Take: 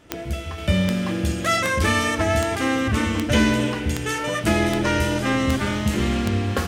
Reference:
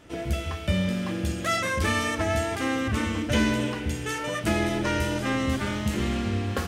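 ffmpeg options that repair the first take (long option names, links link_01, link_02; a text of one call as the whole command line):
ffmpeg -i in.wav -af "adeclick=threshold=4,asetnsamples=nb_out_samples=441:pad=0,asendcmd='0.58 volume volume -5dB',volume=0dB" out.wav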